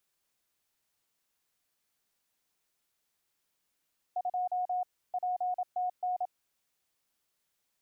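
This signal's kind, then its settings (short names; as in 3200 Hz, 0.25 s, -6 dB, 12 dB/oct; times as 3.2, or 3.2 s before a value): Morse "2 PTN" 27 wpm 727 Hz -28.5 dBFS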